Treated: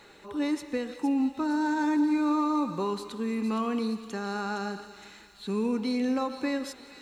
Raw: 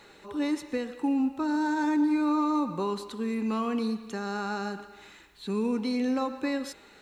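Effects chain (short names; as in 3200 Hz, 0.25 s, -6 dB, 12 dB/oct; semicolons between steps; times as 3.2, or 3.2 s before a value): thin delay 0.463 s, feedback 51%, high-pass 3500 Hz, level -7.5 dB; warbling echo 0.178 s, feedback 70%, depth 109 cents, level -23 dB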